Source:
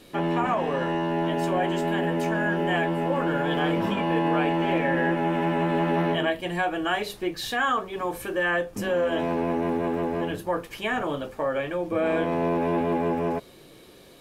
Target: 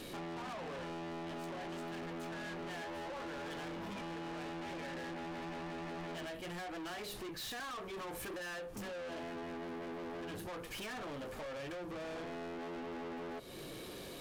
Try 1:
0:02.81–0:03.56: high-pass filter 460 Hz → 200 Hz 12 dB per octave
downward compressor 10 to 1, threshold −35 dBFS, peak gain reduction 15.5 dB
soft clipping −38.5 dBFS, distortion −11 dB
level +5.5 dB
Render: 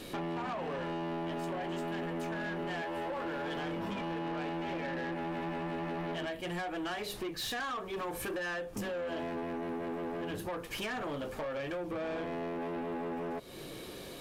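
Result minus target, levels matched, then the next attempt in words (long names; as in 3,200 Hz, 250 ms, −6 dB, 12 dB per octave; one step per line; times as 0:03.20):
soft clipping: distortion −5 dB
0:02.81–0:03.56: high-pass filter 460 Hz → 200 Hz 12 dB per octave
downward compressor 10 to 1, threshold −35 dBFS, peak gain reduction 15.5 dB
soft clipping −47.5 dBFS, distortion −6 dB
level +5.5 dB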